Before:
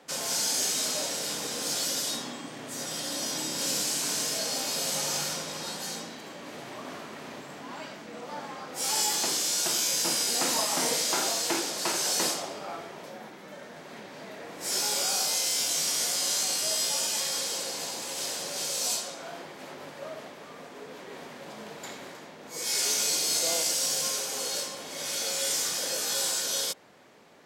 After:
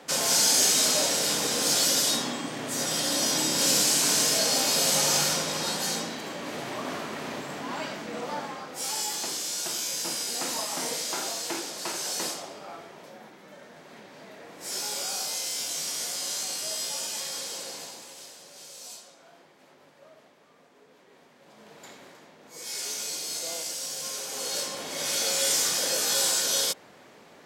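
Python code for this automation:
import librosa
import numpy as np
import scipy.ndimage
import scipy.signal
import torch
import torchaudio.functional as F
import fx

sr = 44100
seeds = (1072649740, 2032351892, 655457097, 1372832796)

y = fx.gain(x, sr, db=fx.line((8.24, 6.5), (8.98, -4.0), (17.74, -4.0), (18.34, -14.0), (21.35, -14.0), (21.79, -6.5), (23.95, -6.5), (24.79, 4.0)))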